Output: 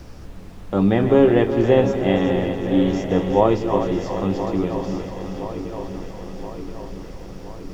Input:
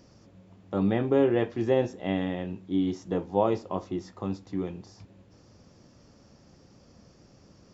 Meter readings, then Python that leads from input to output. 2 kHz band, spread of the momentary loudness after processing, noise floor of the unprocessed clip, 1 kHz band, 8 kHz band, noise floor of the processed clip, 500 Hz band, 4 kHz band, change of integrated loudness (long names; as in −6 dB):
+9.5 dB, 19 LU, −58 dBFS, +9.5 dB, can't be measured, −38 dBFS, +9.5 dB, +10.0 dB, +8.5 dB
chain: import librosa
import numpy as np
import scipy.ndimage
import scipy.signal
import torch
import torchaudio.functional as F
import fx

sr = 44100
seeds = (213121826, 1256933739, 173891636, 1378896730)

y = fx.reverse_delay_fb(x, sr, ms=511, feedback_pct=77, wet_db=-10)
y = fx.dmg_noise_colour(y, sr, seeds[0], colour='brown', level_db=-44.0)
y = fx.echo_split(y, sr, split_hz=360.0, low_ms=172, high_ms=369, feedback_pct=52, wet_db=-9)
y = y * librosa.db_to_amplitude(8.0)